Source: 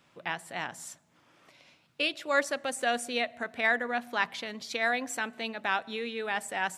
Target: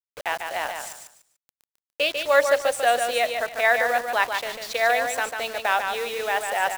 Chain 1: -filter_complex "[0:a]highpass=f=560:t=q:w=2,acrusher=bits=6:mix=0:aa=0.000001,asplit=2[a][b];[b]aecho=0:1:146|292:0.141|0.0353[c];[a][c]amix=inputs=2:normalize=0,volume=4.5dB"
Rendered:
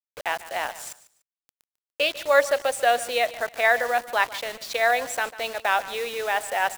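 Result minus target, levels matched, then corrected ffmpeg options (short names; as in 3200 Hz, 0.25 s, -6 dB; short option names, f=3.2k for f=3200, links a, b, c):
echo-to-direct -11 dB
-filter_complex "[0:a]highpass=f=560:t=q:w=2,acrusher=bits=6:mix=0:aa=0.000001,asplit=2[a][b];[b]aecho=0:1:146|292|438:0.501|0.125|0.0313[c];[a][c]amix=inputs=2:normalize=0,volume=4.5dB"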